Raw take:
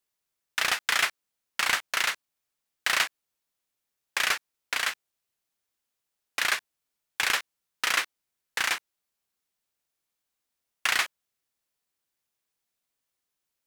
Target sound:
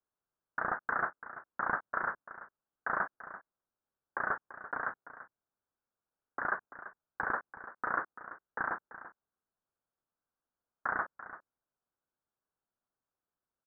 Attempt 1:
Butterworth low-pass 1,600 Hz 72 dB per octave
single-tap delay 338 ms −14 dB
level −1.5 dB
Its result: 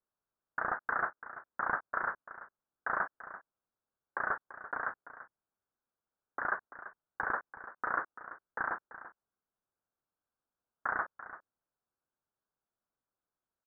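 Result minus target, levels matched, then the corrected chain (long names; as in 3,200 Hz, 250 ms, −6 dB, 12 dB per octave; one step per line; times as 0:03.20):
250 Hz band −2.5 dB
Butterworth low-pass 1,600 Hz 72 dB per octave
dynamic equaliser 190 Hz, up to +4 dB, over −54 dBFS, Q 0.82
single-tap delay 338 ms −14 dB
level −1.5 dB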